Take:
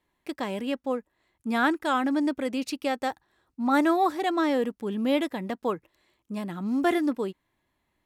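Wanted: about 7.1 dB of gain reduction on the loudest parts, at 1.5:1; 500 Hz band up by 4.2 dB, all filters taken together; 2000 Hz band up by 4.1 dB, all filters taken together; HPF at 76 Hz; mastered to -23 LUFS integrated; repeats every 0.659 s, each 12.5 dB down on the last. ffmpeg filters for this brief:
-af "highpass=76,equalizer=f=500:t=o:g=5,equalizer=f=2k:t=o:g=5,acompressor=threshold=-36dB:ratio=1.5,aecho=1:1:659|1318|1977:0.237|0.0569|0.0137,volume=8dB"

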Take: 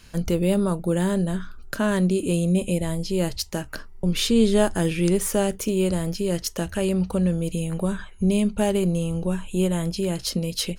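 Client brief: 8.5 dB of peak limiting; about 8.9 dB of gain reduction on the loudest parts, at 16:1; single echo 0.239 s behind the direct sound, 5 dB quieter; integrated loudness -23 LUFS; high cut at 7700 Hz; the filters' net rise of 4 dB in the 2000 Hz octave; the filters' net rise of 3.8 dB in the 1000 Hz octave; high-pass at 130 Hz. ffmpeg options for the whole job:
-af "highpass=130,lowpass=7.7k,equalizer=f=1k:t=o:g=4,equalizer=f=2k:t=o:g=4,acompressor=threshold=-22dB:ratio=16,alimiter=limit=-20dB:level=0:latency=1,aecho=1:1:239:0.562,volume=5dB"

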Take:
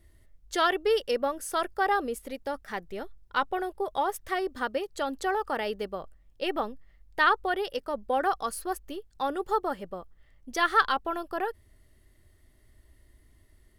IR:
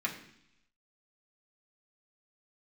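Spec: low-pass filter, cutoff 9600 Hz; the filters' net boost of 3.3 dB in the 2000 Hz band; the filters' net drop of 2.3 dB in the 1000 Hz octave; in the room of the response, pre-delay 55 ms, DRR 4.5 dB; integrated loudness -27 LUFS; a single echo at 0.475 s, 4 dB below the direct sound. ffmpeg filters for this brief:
-filter_complex "[0:a]lowpass=9.6k,equalizer=f=1k:t=o:g=-5.5,equalizer=f=2k:t=o:g=6.5,aecho=1:1:475:0.631,asplit=2[a][b];[1:a]atrim=start_sample=2205,adelay=55[c];[b][c]afir=irnorm=-1:irlink=0,volume=-10dB[d];[a][d]amix=inputs=2:normalize=0,volume=0.5dB"

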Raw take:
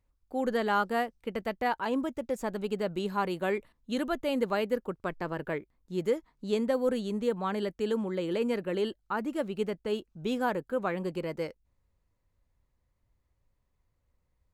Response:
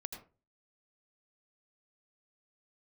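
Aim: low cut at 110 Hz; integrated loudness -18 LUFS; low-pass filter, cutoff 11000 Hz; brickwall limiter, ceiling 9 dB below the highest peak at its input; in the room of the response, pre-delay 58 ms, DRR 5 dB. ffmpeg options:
-filter_complex "[0:a]highpass=110,lowpass=11k,alimiter=level_in=0.5dB:limit=-24dB:level=0:latency=1,volume=-0.5dB,asplit=2[a][b];[1:a]atrim=start_sample=2205,adelay=58[c];[b][c]afir=irnorm=-1:irlink=0,volume=-2.5dB[d];[a][d]amix=inputs=2:normalize=0,volume=15.5dB"

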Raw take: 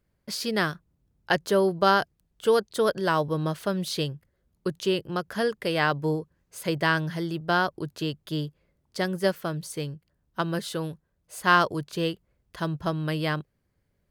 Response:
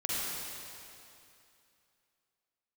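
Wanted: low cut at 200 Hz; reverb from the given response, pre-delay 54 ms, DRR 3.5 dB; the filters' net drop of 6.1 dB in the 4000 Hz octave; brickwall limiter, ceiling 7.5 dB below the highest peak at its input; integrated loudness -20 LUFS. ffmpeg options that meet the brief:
-filter_complex "[0:a]highpass=200,equalizer=f=4k:t=o:g=-8.5,alimiter=limit=-14dB:level=0:latency=1,asplit=2[a][b];[1:a]atrim=start_sample=2205,adelay=54[c];[b][c]afir=irnorm=-1:irlink=0,volume=-10.5dB[d];[a][d]amix=inputs=2:normalize=0,volume=8.5dB"

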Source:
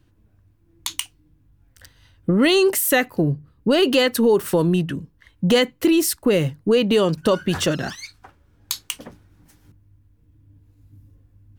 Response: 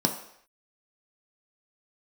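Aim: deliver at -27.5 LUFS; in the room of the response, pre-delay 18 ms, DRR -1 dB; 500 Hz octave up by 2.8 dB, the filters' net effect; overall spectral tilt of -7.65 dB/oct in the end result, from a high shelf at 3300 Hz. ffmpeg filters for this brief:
-filter_complex "[0:a]equalizer=f=500:t=o:g=3.5,highshelf=f=3.3k:g=-8.5,asplit=2[a][b];[1:a]atrim=start_sample=2205,adelay=18[c];[b][c]afir=irnorm=-1:irlink=0,volume=-9dB[d];[a][d]amix=inputs=2:normalize=0,volume=-17.5dB"

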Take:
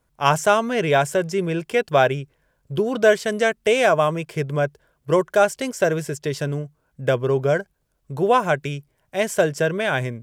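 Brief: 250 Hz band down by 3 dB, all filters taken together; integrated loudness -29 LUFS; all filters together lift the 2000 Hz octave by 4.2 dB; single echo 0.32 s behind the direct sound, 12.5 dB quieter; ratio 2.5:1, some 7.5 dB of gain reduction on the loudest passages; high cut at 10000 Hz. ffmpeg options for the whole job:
-af "lowpass=10k,equalizer=f=250:t=o:g=-5,equalizer=f=2k:t=o:g=6,acompressor=threshold=-22dB:ratio=2.5,aecho=1:1:320:0.237,volume=-3dB"

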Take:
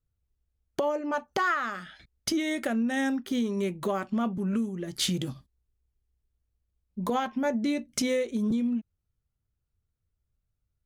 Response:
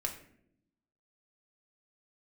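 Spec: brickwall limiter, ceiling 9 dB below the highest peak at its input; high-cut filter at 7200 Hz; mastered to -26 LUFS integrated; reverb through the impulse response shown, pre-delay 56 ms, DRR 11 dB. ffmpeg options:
-filter_complex "[0:a]lowpass=7.2k,alimiter=limit=-23.5dB:level=0:latency=1,asplit=2[a][b];[1:a]atrim=start_sample=2205,adelay=56[c];[b][c]afir=irnorm=-1:irlink=0,volume=-12.5dB[d];[a][d]amix=inputs=2:normalize=0,volume=5.5dB"

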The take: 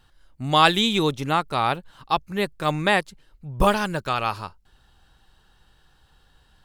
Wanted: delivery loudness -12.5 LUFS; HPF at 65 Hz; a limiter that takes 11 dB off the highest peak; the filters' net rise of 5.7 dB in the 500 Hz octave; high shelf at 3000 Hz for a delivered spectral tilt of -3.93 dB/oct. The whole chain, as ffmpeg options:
-af "highpass=65,equalizer=f=500:t=o:g=7.5,highshelf=f=3k:g=-3,volume=12.5dB,alimiter=limit=0dB:level=0:latency=1"

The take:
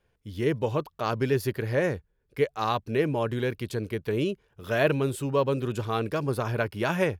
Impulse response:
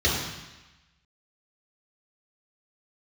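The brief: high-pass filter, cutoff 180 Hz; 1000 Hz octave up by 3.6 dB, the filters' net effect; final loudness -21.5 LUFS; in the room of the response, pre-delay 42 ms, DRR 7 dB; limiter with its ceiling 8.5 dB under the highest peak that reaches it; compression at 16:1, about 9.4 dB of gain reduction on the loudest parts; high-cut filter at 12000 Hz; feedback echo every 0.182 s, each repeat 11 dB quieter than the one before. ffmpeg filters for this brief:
-filter_complex "[0:a]highpass=180,lowpass=12k,equalizer=f=1k:t=o:g=4.5,acompressor=threshold=-26dB:ratio=16,alimiter=limit=-23dB:level=0:latency=1,aecho=1:1:182|364|546:0.282|0.0789|0.0221,asplit=2[a][b];[1:a]atrim=start_sample=2205,adelay=42[c];[b][c]afir=irnorm=-1:irlink=0,volume=-22.5dB[d];[a][d]amix=inputs=2:normalize=0,volume=12dB"

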